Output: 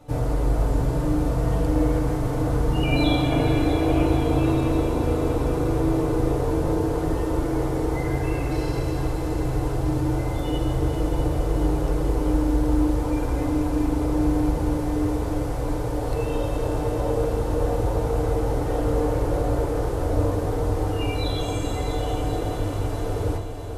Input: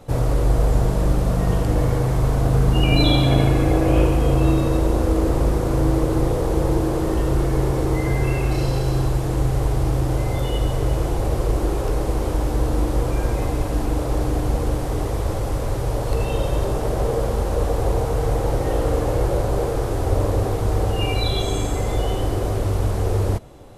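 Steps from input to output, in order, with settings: multi-head echo 0.216 s, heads second and third, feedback 63%, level -11 dB; FDN reverb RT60 0.36 s, low-frequency decay 1.1×, high-frequency decay 0.3×, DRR 0.5 dB; gain -7 dB

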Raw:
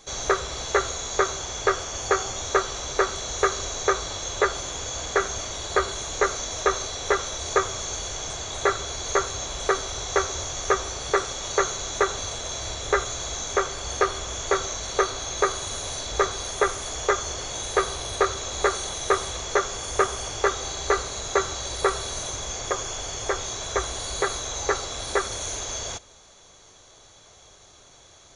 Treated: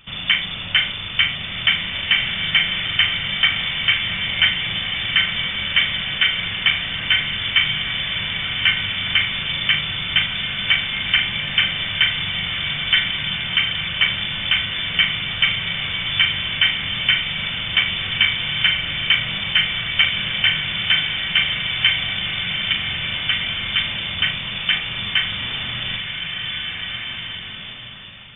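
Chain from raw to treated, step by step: flutter echo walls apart 6.8 m, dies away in 0.32 s; inverted band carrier 3500 Hz; bloom reverb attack 1.98 s, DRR 3.5 dB; gain +4 dB

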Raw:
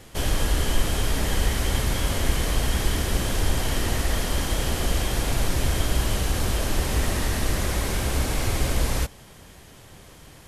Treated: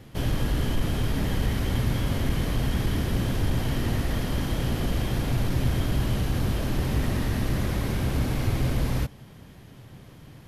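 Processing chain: soft clip -10 dBFS, distortion -26 dB; graphic EQ 125/250/8000 Hz +10/+6/-9 dB; gain -4.5 dB

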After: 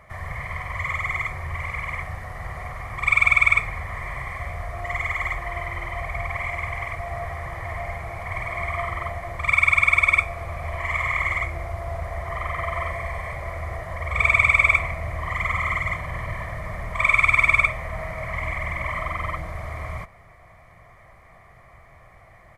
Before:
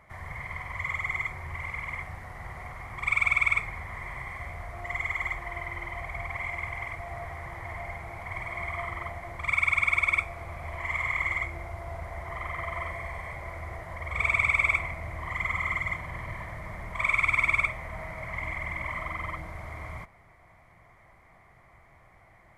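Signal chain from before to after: comb 1.7 ms, depth 36%; gain +6 dB

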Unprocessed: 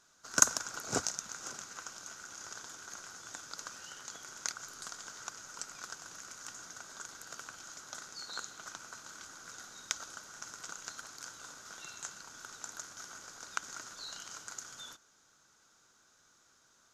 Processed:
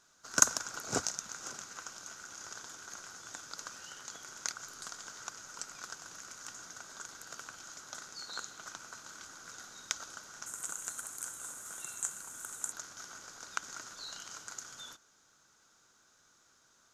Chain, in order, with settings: 10.46–12.72 resonant high shelf 6700 Hz +11 dB, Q 3

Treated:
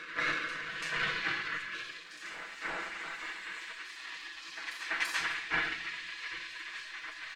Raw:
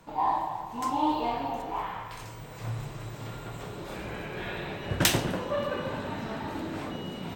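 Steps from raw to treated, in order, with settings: minimum comb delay 1.4 ms; spectral gate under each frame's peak -20 dB weak; LPF 6400 Hz 12 dB/oct; bell 1700 Hz +13 dB 1.2 oct; comb 6 ms, depth 47%; reverse echo 0.336 s -10 dB; on a send at -4.5 dB: reverb RT60 0.65 s, pre-delay 6 ms

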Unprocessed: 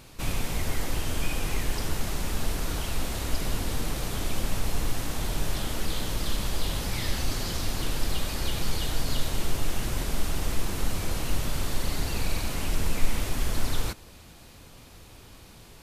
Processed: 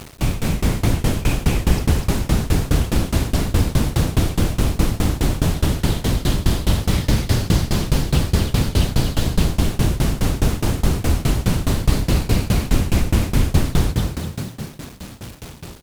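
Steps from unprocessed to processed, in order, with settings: in parallel at -0.5 dB: limiter -16.5 dBFS, peak gain reduction 8.5 dB; on the sum: HPF 54 Hz 6 dB/oct; low shelf 380 Hz +10.5 dB; on a send: frequency-shifting echo 0.248 s, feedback 51%, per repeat +34 Hz, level -3 dB; on the sum: bit-crush 6-bit; tremolo saw down 4.8 Hz, depth 95%; Doppler distortion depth 0.4 ms; gain +2.5 dB

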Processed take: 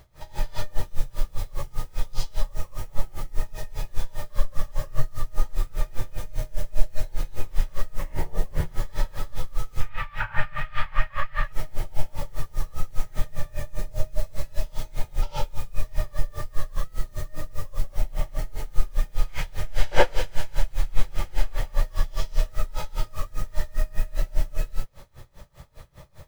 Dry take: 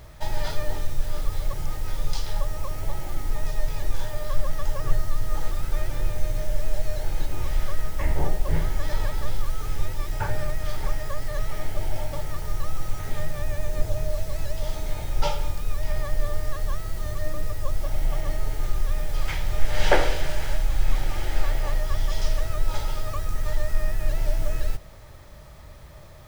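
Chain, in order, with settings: 9.8–11.44 EQ curve 160 Hz 0 dB, 340 Hz -13 dB, 1300 Hz +14 dB, 2700 Hz +12 dB, 5900 Hz -12 dB; non-linear reverb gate 0.11 s rising, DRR -5.5 dB; dB-linear tremolo 5 Hz, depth 26 dB; gain -4 dB

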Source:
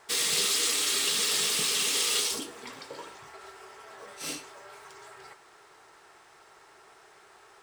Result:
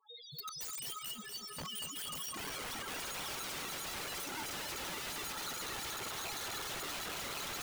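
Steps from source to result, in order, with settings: recorder AGC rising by 78 dB/s; spectral noise reduction 17 dB; 1.08–1.91 LPF 2800 Hz 6 dB/oct; compressor 3:1, threshold -37 dBFS, peak gain reduction 9.5 dB; flange 0.34 Hz, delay 6.9 ms, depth 8.6 ms, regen -67%; loudest bins only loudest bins 2; wrapped overs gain 52 dB; echo with dull and thin repeats by turns 0.544 s, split 1500 Hz, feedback 51%, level -7 dB; lo-fi delay 0.235 s, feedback 80%, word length 13-bit, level -8 dB; gain +13.5 dB

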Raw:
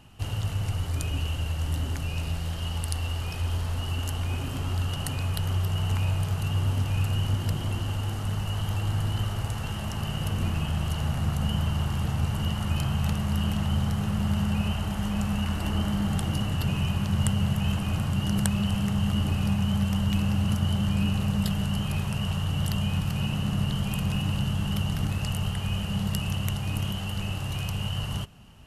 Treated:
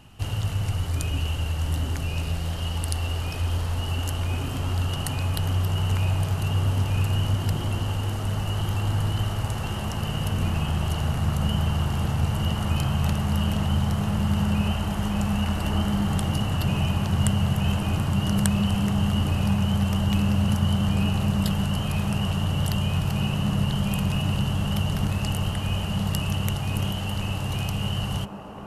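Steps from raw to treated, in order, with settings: on a send: band-limited delay 1.049 s, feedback 84%, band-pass 570 Hz, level -6 dB; on the sum: gain +2.5 dB

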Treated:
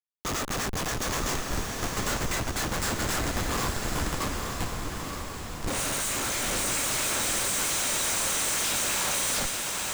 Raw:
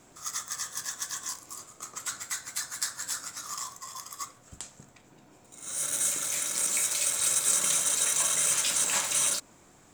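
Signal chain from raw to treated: spectral trails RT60 0.40 s; Schmitt trigger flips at -31.5 dBFS; diffused feedback echo 0.901 s, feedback 51%, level -3 dB

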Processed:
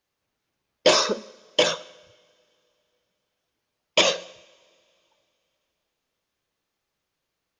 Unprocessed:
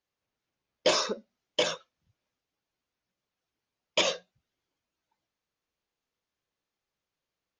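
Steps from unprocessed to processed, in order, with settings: two-slope reverb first 0.92 s, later 3.1 s, from -18 dB, DRR 16 dB; gain +7 dB

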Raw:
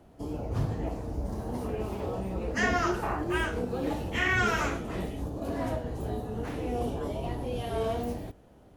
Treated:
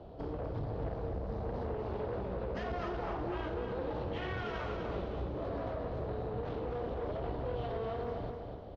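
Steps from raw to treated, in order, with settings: ten-band EQ 250 Hz -7 dB, 500 Hz +6 dB, 2000 Hz -11 dB, 4000 Hz +8 dB, 8000 Hz -5 dB; limiter -25.5 dBFS, peak gain reduction 9.5 dB; compressor 2.5:1, threshold -43 dBFS, peak gain reduction 9 dB; one-sided clip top -47 dBFS, bottom -37 dBFS; air absorption 290 m; feedback echo 0.249 s, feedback 42%, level -5.5 dB; gain +7 dB

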